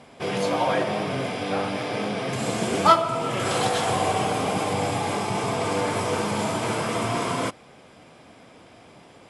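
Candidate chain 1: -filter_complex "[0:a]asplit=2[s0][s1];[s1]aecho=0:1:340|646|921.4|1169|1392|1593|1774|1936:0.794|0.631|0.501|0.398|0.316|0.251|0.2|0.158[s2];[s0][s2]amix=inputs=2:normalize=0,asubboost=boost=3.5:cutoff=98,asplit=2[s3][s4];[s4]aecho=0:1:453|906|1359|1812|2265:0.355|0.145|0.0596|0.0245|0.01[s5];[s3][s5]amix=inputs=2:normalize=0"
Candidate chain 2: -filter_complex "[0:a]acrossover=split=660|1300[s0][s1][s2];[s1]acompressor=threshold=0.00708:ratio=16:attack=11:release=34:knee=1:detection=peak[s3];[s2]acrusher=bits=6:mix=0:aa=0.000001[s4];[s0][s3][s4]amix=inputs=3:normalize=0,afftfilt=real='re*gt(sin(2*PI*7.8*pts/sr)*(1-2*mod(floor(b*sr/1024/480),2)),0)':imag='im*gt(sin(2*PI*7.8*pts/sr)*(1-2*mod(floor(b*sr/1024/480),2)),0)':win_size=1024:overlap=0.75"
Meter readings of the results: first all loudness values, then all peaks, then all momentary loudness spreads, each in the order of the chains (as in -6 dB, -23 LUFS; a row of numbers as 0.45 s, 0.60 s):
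-21.0 LUFS, -30.5 LUFS; -4.0 dBFS, -14.5 dBFS; 9 LU, 4 LU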